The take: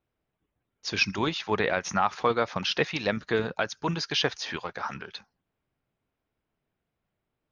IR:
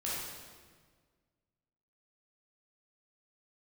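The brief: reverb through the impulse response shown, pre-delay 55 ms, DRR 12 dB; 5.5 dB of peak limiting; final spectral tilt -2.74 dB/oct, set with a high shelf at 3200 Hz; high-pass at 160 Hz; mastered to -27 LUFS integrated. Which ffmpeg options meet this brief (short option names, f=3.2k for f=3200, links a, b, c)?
-filter_complex "[0:a]highpass=160,highshelf=f=3.2k:g=5,alimiter=limit=-14dB:level=0:latency=1,asplit=2[a][b];[1:a]atrim=start_sample=2205,adelay=55[c];[b][c]afir=irnorm=-1:irlink=0,volume=-16dB[d];[a][d]amix=inputs=2:normalize=0,volume=1.5dB"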